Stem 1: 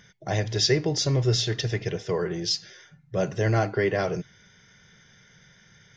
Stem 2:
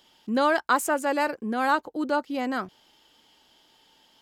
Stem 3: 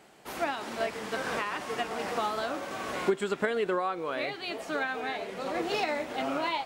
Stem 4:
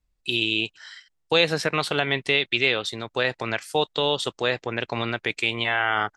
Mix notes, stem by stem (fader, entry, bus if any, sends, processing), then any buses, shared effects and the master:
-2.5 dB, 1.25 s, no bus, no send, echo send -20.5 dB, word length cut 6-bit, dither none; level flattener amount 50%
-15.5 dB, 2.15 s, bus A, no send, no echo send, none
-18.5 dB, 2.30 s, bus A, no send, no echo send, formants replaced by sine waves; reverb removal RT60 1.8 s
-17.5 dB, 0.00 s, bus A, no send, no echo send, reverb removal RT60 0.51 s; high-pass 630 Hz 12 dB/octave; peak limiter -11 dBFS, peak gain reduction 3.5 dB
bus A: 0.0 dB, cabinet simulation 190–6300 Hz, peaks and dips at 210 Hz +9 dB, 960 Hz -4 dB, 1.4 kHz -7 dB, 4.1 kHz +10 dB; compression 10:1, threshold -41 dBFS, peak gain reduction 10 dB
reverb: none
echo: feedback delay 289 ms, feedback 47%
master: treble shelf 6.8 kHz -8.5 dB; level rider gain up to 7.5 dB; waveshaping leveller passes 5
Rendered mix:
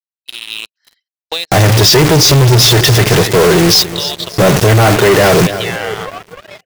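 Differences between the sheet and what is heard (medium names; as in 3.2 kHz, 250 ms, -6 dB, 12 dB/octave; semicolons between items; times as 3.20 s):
stem 2: muted; stem 3: missing reverb removal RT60 1.8 s; master: missing treble shelf 6.8 kHz -8.5 dB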